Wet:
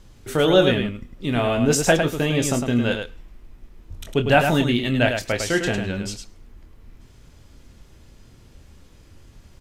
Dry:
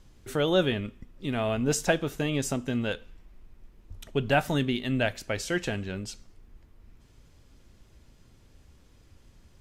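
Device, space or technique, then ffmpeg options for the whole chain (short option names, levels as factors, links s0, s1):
slapback doubling: -filter_complex "[0:a]asplit=3[s0][s1][s2];[s1]adelay=25,volume=0.398[s3];[s2]adelay=104,volume=0.501[s4];[s0][s3][s4]amix=inputs=3:normalize=0,volume=2.11"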